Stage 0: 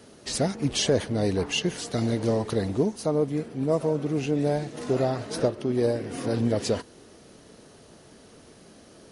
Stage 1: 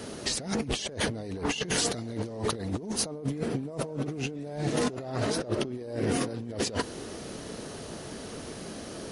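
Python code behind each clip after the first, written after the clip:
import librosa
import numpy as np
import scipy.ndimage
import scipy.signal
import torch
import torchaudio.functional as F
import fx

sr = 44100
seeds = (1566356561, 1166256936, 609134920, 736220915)

y = fx.over_compress(x, sr, threshold_db=-36.0, ratio=-1.0)
y = y * 10.0 ** (3.0 / 20.0)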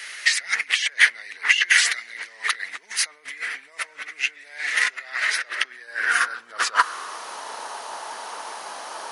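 y = fx.dynamic_eq(x, sr, hz=1500.0, q=1.1, threshold_db=-49.0, ratio=4.0, max_db=7)
y = fx.filter_sweep_highpass(y, sr, from_hz=2000.0, to_hz=910.0, start_s=5.47, end_s=7.43, q=5.1)
y = y * 10.0 ** (5.0 / 20.0)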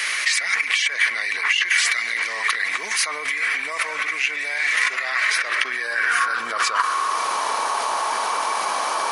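y = fx.small_body(x, sr, hz=(1100.0, 2300.0), ring_ms=45, db=12)
y = fx.env_flatten(y, sr, amount_pct=70)
y = y * 10.0 ** (-7.5 / 20.0)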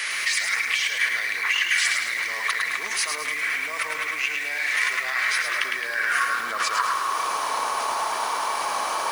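y = fx.echo_crushed(x, sr, ms=107, feedback_pct=55, bits=6, wet_db=-4.5)
y = y * 10.0 ** (-4.0 / 20.0)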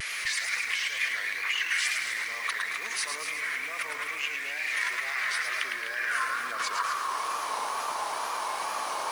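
y = fx.vibrato(x, sr, rate_hz=2.2, depth_cents=89.0)
y = y + 10.0 ** (-9.5 / 20.0) * np.pad(y, (int(251 * sr / 1000.0), 0))[:len(y)]
y = y * 10.0 ** (-6.5 / 20.0)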